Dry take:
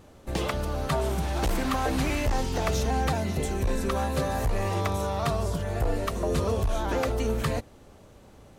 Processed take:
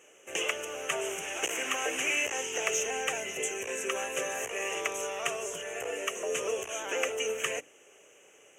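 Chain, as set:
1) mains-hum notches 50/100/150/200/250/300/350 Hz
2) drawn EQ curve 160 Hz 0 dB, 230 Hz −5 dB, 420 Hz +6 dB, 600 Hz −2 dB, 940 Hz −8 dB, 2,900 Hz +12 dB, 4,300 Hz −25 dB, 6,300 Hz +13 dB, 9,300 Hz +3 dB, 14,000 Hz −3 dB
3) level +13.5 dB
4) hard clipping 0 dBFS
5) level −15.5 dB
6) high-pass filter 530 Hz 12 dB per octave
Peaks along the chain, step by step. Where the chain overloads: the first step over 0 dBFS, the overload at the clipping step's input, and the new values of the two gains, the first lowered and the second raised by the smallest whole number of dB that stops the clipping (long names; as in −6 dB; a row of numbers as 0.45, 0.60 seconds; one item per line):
−15.0, −10.5, +3.0, 0.0, −15.5, −13.5 dBFS
step 3, 3.0 dB
step 3 +10.5 dB, step 5 −12.5 dB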